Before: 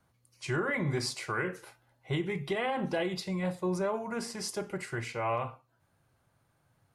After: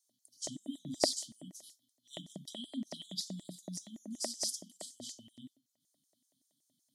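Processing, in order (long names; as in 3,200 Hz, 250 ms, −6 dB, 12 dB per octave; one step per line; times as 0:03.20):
linear-phase brick-wall band-stop 280–3,000 Hz
auto-filter high-pass square 5.3 Hz 560–6,300 Hz
hollow resonant body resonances 310/620/1,900 Hz, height 17 dB, ringing for 20 ms
level +1 dB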